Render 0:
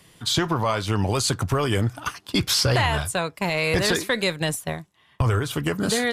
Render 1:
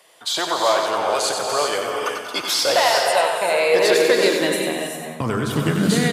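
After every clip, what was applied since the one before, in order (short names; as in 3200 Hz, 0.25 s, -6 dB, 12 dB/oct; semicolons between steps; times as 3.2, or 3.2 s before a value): feedback echo 93 ms, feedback 47%, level -6 dB; non-linear reverb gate 0.42 s rising, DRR 2.5 dB; high-pass sweep 600 Hz -> 150 Hz, 3.26–5.98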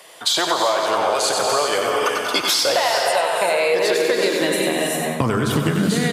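compressor, threshold -25 dBFS, peak gain reduction 13 dB; gain +9 dB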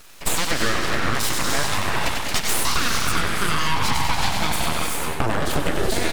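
full-wave rectifier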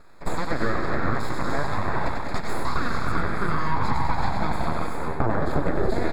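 running mean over 15 samples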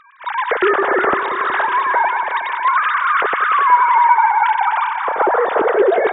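sine-wave speech; in parallel at -3 dB: limiter -13 dBFS, peak gain reduction 8 dB; on the sum: multi-head echo 0.183 s, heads first and second, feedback 55%, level -13.5 dB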